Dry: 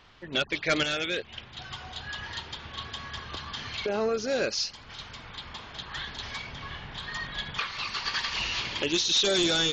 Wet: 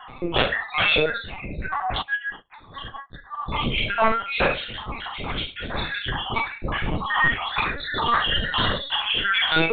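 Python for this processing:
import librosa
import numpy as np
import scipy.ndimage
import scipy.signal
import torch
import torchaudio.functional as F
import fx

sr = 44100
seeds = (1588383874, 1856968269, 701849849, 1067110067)

y = fx.spec_dropout(x, sr, seeds[0], share_pct=75)
y = fx.lowpass(y, sr, hz=1700.0, slope=6)
y = fx.fold_sine(y, sr, drive_db=13, ceiling_db=-18.5)
y = fx.rev_schroeder(y, sr, rt60_s=0.33, comb_ms=27, drr_db=0.5)
y = fx.lpc_vocoder(y, sr, seeds[1], excitation='pitch_kept', order=16)
y = fx.upward_expand(y, sr, threshold_db=-40.0, expansion=2.5, at=(2.01, 3.39), fade=0.02)
y = y * librosa.db_to_amplitude(2.5)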